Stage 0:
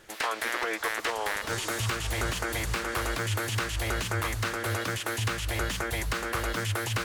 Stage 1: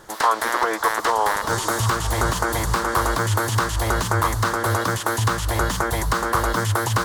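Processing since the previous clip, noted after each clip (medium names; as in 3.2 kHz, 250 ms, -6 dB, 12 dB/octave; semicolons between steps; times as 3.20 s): fifteen-band graphic EQ 160 Hz +3 dB, 1 kHz +9 dB, 2.5 kHz -12 dB; trim +8 dB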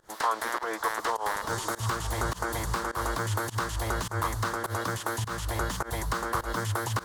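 volume shaper 103 bpm, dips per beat 1, -22 dB, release 129 ms; trim -8.5 dB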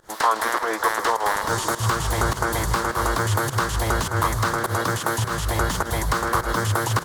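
frequency-shifting echo 157 ms, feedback 46%, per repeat +32 Hz, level -13 dB; trim +7.5 dB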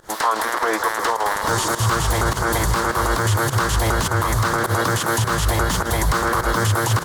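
peak limiter -16.5 dBFS, peak gain reduction 8.5 dB; trim +6.5 dB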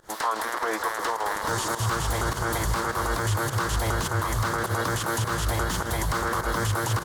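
delay 613 ms -12 dB; trim -7 dB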